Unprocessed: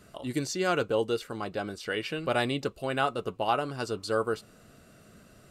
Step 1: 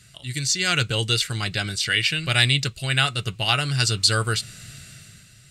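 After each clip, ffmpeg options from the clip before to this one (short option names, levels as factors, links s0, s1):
-af "equalizer=f=125:t=o:w=1:g=11,equalizer=f=250:t=o:w=1:g=-10,equalizer=f=500:t=o:w=1:g=-11,equalizer=f=1000:t=o:w=1:g=-11,equalizer=f=2000:t=o:w=1:g=8,equalizer=f=4000:t=o:w=1:g=8,equalizer=f=8000:t=o:w=1:g=10,dynaudnorm=f=120:g=11:m=3.98"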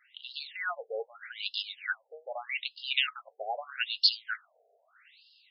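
-af "afftfilt=real='re*between(b*sr/1024,550*pow(3900/550,0.5+0.5*sin(2*PI*0.8*pts/sr))/1.41,550*pow(3900/550,0.5+0.5*sin(2*PI*0.8*pts/sr))*1.41)':imag='im*between(b*sr/1024,550*pow(3900/550,0.5+0.5*sin(2*PI*0.8*pts/sr))/1.41,550*pow(3900/550,0.5+0.5*sin(2*PI*0.8*pts/sr))*1.41)':win_size=1024:overlap=0.75,volume=0.668"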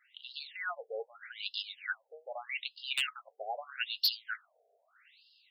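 -af "aeval=exprs='0.158*(abs(mod(val(0)/0.158+3,4)-2)-1)':c=same,volume=0.668"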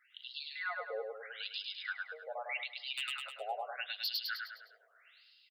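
-af "aecho=1:1:103|206|309|412|515|618:0.631|0.284|0.128|0.0575|0.0259|0.0116,alimiter=level_in=1.33:limit=0.0631:level=0:latency=1:release=197,volume=0.75,volume=0.891"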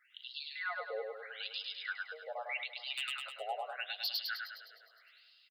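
-af "aecho=1:1:411|822:0.133|0.0213"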